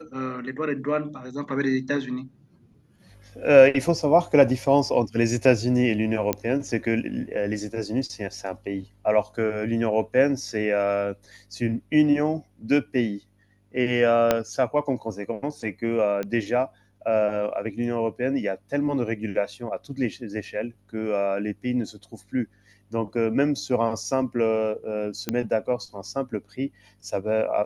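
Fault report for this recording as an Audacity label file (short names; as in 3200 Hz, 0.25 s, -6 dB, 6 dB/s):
6.330000	6.330000	pop -8 dBFS
14.310000	14.310000	pop -5 dBFS
16.230000	16.230000	pop -17 dBFS
25.290000	25.290000	pop -11 dBFS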